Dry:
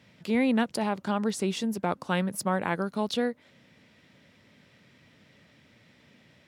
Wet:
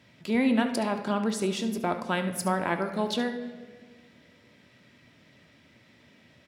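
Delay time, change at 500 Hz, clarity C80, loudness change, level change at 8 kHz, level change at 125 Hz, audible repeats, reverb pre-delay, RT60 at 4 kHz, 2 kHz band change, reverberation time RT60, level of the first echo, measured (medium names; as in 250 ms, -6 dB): 71 ms, +0.5 dB, 11.5 dB, +0.5 dB, +0.5 dB, -1.0 dB, 1, 3 ms, 1.1 s, +1.0 dB, 1.6 s, -13.0 dB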